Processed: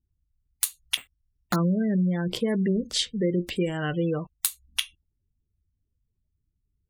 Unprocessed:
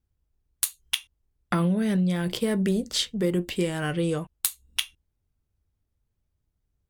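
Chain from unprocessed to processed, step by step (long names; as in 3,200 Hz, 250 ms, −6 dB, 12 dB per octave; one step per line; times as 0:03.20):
gate on every frequency bin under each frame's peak −25 dB strong
0:00.97–0:01.56: bad sample-rate conversion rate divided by 8×, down none, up hold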